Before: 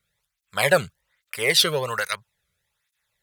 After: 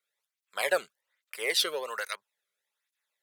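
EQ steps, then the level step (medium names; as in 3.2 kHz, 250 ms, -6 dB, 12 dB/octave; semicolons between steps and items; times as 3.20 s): high-pass 310 Hz 24 dB/octave; -8.5 dB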